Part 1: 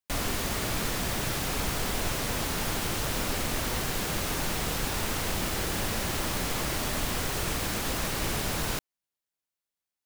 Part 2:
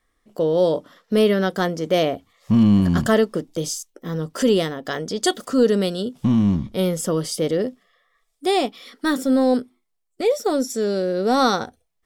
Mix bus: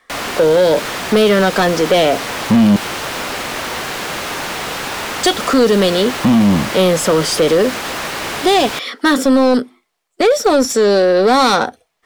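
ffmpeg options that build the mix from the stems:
ffmpeg -i stem1.wav -i stem2.wav -filter_complex "[0:a]volume=-8dB[link_01];[1:a]volume=-1dB,asplit=3[link_02][link_03][link_04];[link_02]atrim=end=2.76,asetpts=PTS-STARTPTS,afade=type=out:start_time=2.756:duration=0.004:curve=hsin[link_05];[link_03]atrim=start=2.76:end=5.19,asetpts=PTS-STARTPTS,volume=0[link_06];[link_04]atrim=start=5.19,asetpts=PTS-STARTPTS,afade=type=in:duration=0.004:curve=hsin[link_07];[link_05][link_06][link_07]concat=n=3:v=0:a=1[link_08];[link_01][link_08]amix=inputs=2:normalize=0,acrossover=split=240|3000[link_09][link_10][link_11];[link_10]acompressor=threshold=-23dB:ratio=6[link_12];[link_09][link_12][link_11]amix=inputs=3:normalize=0,asplit=2[link_13][link_14];[link_14]highpass=frequency=720:poles=1,volume=28dB,asoftclip=type=tanh:threshold=-1dB[link_15];[link_13][link_15]amix=inputs=2:normalize=0,lowpass=frequency=2700:poles=1,volume=-6dB" out.wav

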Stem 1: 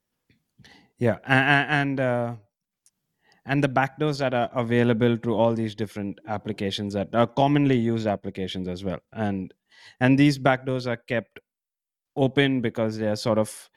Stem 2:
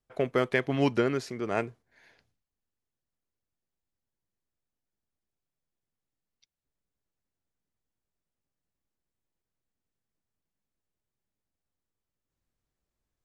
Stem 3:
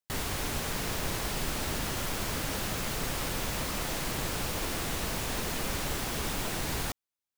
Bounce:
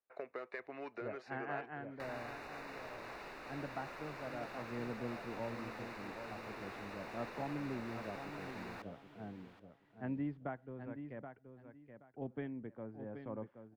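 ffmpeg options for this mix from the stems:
ffmpeg -i stem1.wav -i stem2.wav -i stem3.wav -filter_complex "[0:a]lowpass=1200,asubboost=boost=6:cutoff=190,volume=-18.5dB,asplit=2[link_01][link_02];[link_02]volume=-8.5dB[link_03];[1:a]lowshelf=frequency=340:gain=-8.5,asoftclip=type=hard:threshold=-21.5dB,volume=-5.5dB,asplit=2[link_04][link_05];[link_05]volume=-22dB[link_06];[2:a]adelay=1900,volume=-3.5dB,asplit=2[link_07][link_08];[link_08]volume=-22dB[link_09];[link_04][link_07]amix=inputs=2:normalize=0,asuperstop=centerf=3200:order=4:qfactor=4.1,acompressor=threshold=-40dB:ratio=6,volume=0dB[link_10];[link_03][link_06][link_09]amix=inputs=3:normalize=0,aecho=0:1:776|1552|2328|3104:1|0.22|0.0484|0.0106[link_11];[link_01][link_10][link_11]amix=inputs=3:normalize=0,acrossover=split=300 3400:gain=0.126 1 0.0631[link_12][link_13][link_14];[link_12][link_13][link_14]amix=inputs=3:normalize=0" out.wav

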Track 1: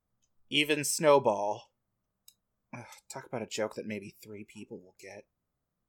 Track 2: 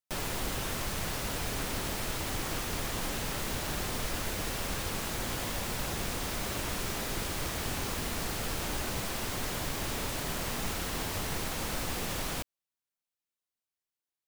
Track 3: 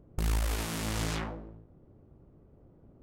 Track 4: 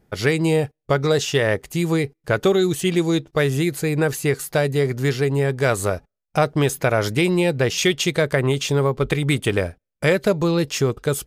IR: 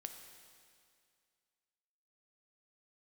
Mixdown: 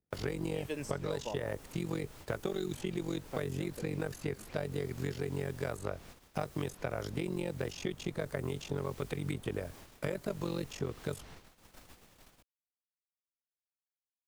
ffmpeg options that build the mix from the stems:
-filter_complex "[0:a]volume=-1.5dB[link_01];[1:a]volume=-15.5dB[link_02];[2:a]volume=-16.5dB[link_03];[3:a]tremolo=f=46:d=0.919,volume=-5.5dB,asplit=2[link_04][link_05];[link_05]apad=whole_len=259388[link_06];[link_01][link_06]sidechaincompress=threshold=-38dB:ratio=8:attack=16:release=111[link_07];[link_07][link_02][link_03][link_04]amix=inputs=4:normalize=0,agate=range=-20dB:threshold=-47dB:ratio=16:detection=peak,acrossover=split=87|1300|6000[link_08][link_09][link_10][link_11];[link_08]acompressor=threshold=-49dB:ratio=4[link_12];[link_09]acompressor=threshold=-34dB:ratio=4[link_13];[link_10]acompressor=threshold=-49dB:ratio=4[link_14];[link_11]acompressor=threshold=-57dB:ratio=4[link_15];[link_12][link_13][link_14][link_15]amix=inputs=4:normalize=0"

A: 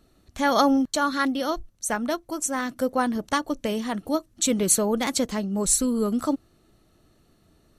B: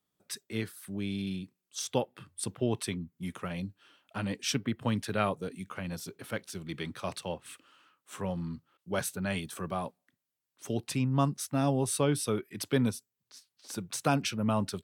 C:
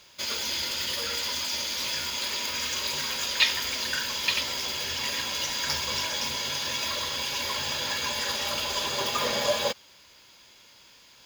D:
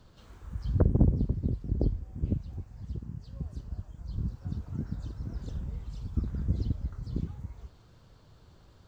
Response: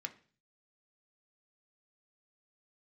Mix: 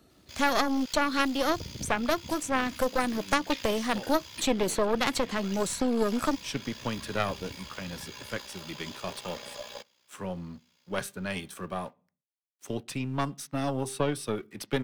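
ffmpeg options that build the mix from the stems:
-filter_complex "[0:a]volume=1.5dB,asplit=2[link_01][link_02];[1:a]bandreject=frequency=397.9:width_type=h:width=4,bandreject=frequency=795.8:width_type=h:width=4,bandreject=frequency=1193.7:width_type=h:width=4,bandreject=frequency=1591.6:width_type=h:width=4,bandreject=frequency=1989.5:width_type=h:width=4,bandreject=frequency=2387.4:width_type=h:width=4,bandreject=frequency=2785.3:width_type=h:width=4,bandreject=frequency=3183.2:width_type=h:width=4,bandreject=frequency=3581.1:width_type=h:width=4,bandreject=frequency=3979:width_type=h:width=4,aeval=exprs='sgn(val(0))*max(abs(val(0))-0.00158,0)':channel_layout=same,adelay=2000,volume=-1.5dB,asplit=2[link_03][link_04];[link_04]volume=-8.5dB[link_05];[2:a]tremolo=f=62:d=0.667,adelay=100,volume=-14dB,asplit=2[link_06][link_07];[link_07]volume=-13dB[link_08];[3:a]adelay=800,volume=-15dB[link_09];[link_02]apad=whole_len=742603[link_10];[link_03][link_10]sidechaincompress=threshold=-42dB:ratio=8:attack=16:release=130[link_11];[4:a]atrim=start_sample=2205[link_12];[link_05][link_08]amix=inputs=2:normalize=0[link_13];[link_13][link_12]afir=irnorm=-1:irlink=0[link_14];[link_01][link_11][link_06][link_09][link_14]amix=inputs=5:normalize=0,highpass=77,acrossover=split=340|3900[link_15][link_16][link_17];[link_15]acompressor=threshold=-33dB:ratio=4[link_18];[link_16]acompressor=threshold=-24dB:ratio=4[link_19];[link_17]acompressor=threshold=-40dB:ratio=4[link_20];[link_18][link_19][link_20]amix=inputs=3:normalize=0,aeval=exprs='0.266*(cos(1*acos(clip(val(0)/0.266,-1,1)))-cos(1*PI/2))+0.0944*(cos(4*acos(clip(val(0)/0.266,-1,1)))-cos(4*PI/2))+0.0211*(cos(6*acos(clip(val(0)/0.266,-1,1)))-cos(6*PI/2))':channel_layout=same"

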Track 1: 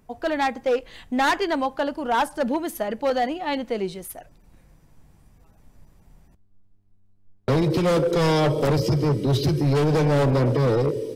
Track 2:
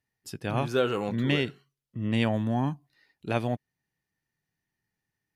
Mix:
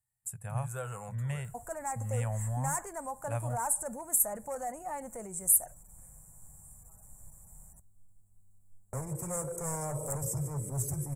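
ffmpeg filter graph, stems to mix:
ffmpeg -i stem1.wav -i stem2.wav -filter_complex "[0:a]firequalizer=gain_entry='entry(110,0);entry(300,13);entry(500,7);entry(2200,3);entry(3400,-10);entry(5300,15);entry(8800,12)':delay=0.05:min_phase=1,acompressor=threshold=-21dB:ratio=3,alimiter=limit=-17.5dB:level=0:latency=1:release=15,adelay=1450,volume=-2dB[link_01];[1:a]equalizer=frequency=290:width=2.4:gain=-13,bandreject=frequency=50:width_type=h:width=6,bandreject=frequency=100:width_type=h:width=6,volume=-0.5dB[link_02];[link_01][link_02]amix=inputs=2:normalize=0,firequalizer=gain_entry='entry(120,0);entry(300,-27);entry(550,-10);entry(860,-7);entry(2300,-15);entry(3300,-25);entry(5000,-29);entry(7600,12);entry(13000,3)':delay=0.05:min_phase=1" out.wav

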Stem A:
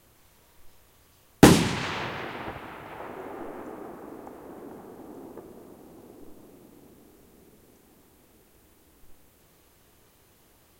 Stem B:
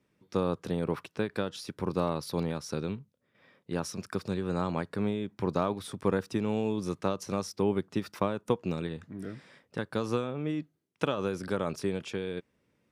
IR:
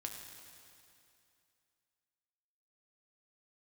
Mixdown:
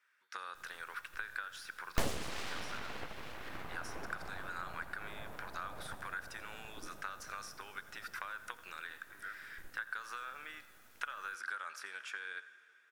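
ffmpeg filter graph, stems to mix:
-filter_complex "[0:a]aeval=exprs='abs(val(0))':channel_layout=same,adelay=550,volume=-1.5dB[link_01];[1:a]acrossover=split=2100|6600[link_02][link_03][link_04];[link_02]acompressor=threshold=-33dB:ratio=4[link_05];[link_03]acompressor=threshold=-54dB:ratio=4[link_06];[link_04]acompressor=threshold=-53dB:ratio=4[link_07];[link_05][link_06][link_07]amix=inputs=3:normalize=0,highpass=frequency=1500:width_type=q:width=5.4,volume=-3.5dB,asplit=3[link_08][link_09][link_10];[link_09]volume=-6.5dB[link_11];[link_10]volume=-16dB[link_12];[2:a]atrim=start_sample=2205[link_13];[link_11][link_13]afir=irnorm=-1:irlink=0[link_14];[link_12]aecho=0:1:86:1[link_15];[link_01][link_08][link_14][link_15]amix=inputs=4:normalize=0,acompressor=threshold=-40dB:ratio=2"

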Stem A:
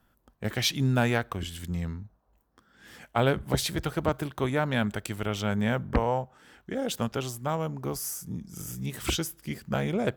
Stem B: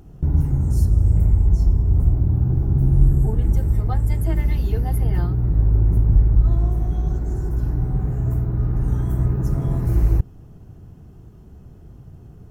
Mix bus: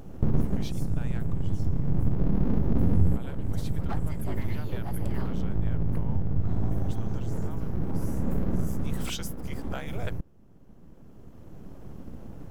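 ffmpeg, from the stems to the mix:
ffmpeg -i stem1.wav -i stem2.wav -filter_complex "[0:a]highpass=610,volume=-5dB,afade=type=in:start_time=8.46:duration=0.34:silence=0.251189,asplit=2[link_01][link_02];[1:a]aeval=exprs='abs(val(0))':channel_layout=same,volume=3dB[link_03];[link_02]apad=whole_len=551607[link_04];[link_03][link_04]sidechaincompress=threshold=-53dB:ratio=4:attack=26:release=1190[link_05];[link_01][link_05]amix=inputs=2:normalize=0,acompressor=threshold=-21dB:ratio=2" out.wav

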